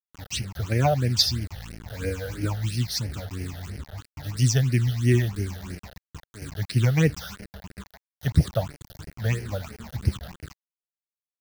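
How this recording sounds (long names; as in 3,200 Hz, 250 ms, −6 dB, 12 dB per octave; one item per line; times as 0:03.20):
a quantiser's noise floor 6 bits, dither none
phaser sweep stages 8, 3 Hz, lowest notch 300–1,100 Hz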